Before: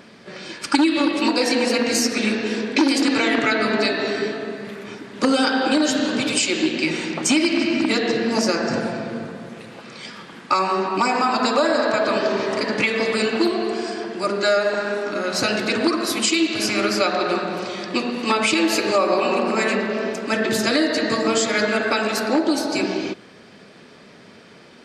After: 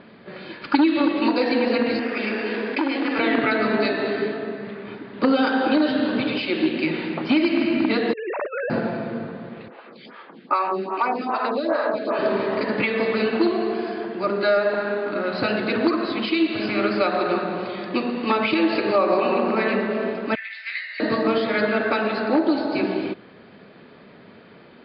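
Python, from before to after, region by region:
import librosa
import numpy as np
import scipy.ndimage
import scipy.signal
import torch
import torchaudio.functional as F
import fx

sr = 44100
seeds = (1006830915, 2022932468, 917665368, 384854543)

y = fx.chain(x, sr, fx.highpass(hz=670.0, slope=6),
    fx.resample_bad(factor=6, down='filtered', up='hold'),
    fx.env_flatten(amount_pct=50), at=(1.99, 3.19))
y = fx.chain(y, sr, fx.sine_speech(),
    fx.highpass(hz=630.0, slope=6),
    fx.over_compress(threshold_db=-27.0, ratio=-0.5), at=(8.13, 8.7))
y = fx.chain(y, sr, fx.highpass(hz=210.0, slope=12),
    fx.stagger_phaser(hz=2.5), at=(9.68, 12.19))
y = fx.chain(y, sr, fx.ladder_highpass(hz=2000.0, resonance_pct=80),
    fx.doubler(ms=17.0, db=-3.0), at=(20.35, 21.0))
y = scipy.signal.sosfilt(scipy.signal.butter(16, 4700.0, 'lowpass', fs=sr, output='sos'), y)
y = fx.high_shelf(y, sr, hz=3400.0, db=-11.5)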